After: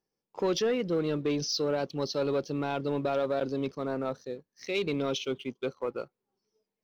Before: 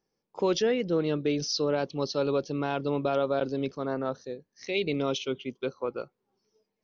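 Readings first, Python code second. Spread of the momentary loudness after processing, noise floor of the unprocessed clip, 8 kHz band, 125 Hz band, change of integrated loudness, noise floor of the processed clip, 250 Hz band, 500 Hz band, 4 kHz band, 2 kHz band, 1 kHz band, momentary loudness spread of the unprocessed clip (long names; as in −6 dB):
8 LU, −82 dBFS, can't be measured, −1.5 dB, −1.5 dB, below −85 dBFS, −1.5 dB, −1.5 dB, −1.0 dB, −2.0 dB, −2.0 dB, 9 LU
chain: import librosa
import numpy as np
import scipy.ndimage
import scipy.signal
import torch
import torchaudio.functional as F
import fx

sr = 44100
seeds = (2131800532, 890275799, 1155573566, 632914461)

y = fx.leveller(x, sr, passes=1)
y = y * 10.0 ** (-4.0 / 20.0)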